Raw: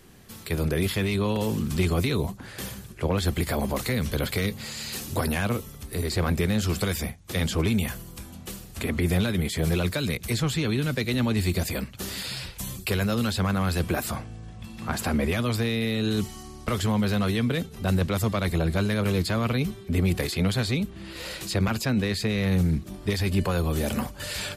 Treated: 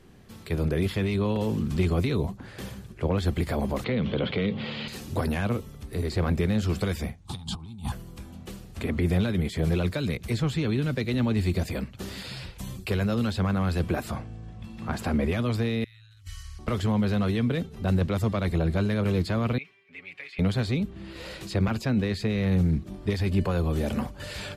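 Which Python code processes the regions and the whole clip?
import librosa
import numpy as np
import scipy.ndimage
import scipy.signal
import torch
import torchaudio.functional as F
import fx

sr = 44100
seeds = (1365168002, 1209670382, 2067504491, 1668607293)

y = fx.chain(x, sr, fx.cabinet(low_hz=130.0, low_slope=12, high_hz=3500.0, hz=(190.0, 490.0, 1700.0, 3200.0), db=(4, 3, -4, 7)),
    fx.env_flatten(amount_pct=50), at=(3.84, 4.88))
y = fx.chain(y, sr, fx.curve_eq(hz=(170.0, 300.0, 570.0, 830.0, 1300.0, 1900.0, 3800.0, 6100.0, 9100.0, 14000.0), db=(0, -8, -21, 7, -4, -19, 3, -6, 3, -14)),
    fx.over_compress(threshold_db=-32.0, ratio=-0.5), at=(7.25, 7.92))
y = fx.chain(y, sr, fx.ellip_bandstop(low_hz=100.0, high_hz=1500.0, order=3, stop_db=50),
    fx.over_compress(threshold_db=-41.0, ratio=-0.5), at=(15.84, 16.59))
y = fx.chain(y, sr, fx.bandpass_q(hz=2300.0, q=3.7),
    fx.comb(ms=7.2, depth=0.78), at=(19.58, 20.39))
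y = fx.lowpass(y, sr, hz=2400.0, slope=6)
y = fx.peak_eq(y, sr, hz=1400.0, db=-2.5, octaves=2.0)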